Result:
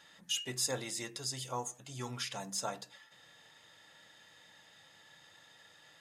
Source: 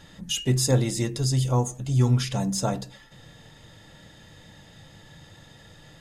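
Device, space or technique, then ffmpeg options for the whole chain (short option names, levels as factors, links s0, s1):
filter by subtraction: -filter_complex "[0:a]asplit=2[s0][s1];[s1]lowpass=1400,volume=-1[s2];[s0][s2]amix=inputs=2:normalize=0,volume=0.422"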